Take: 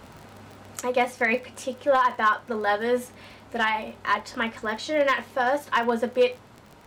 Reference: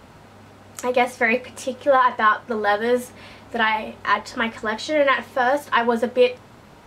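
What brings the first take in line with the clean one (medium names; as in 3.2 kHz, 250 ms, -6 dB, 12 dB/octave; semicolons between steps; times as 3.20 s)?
clip repair -13 dBFS; de-click; trim 0 dB, from 0.81 s +4 dB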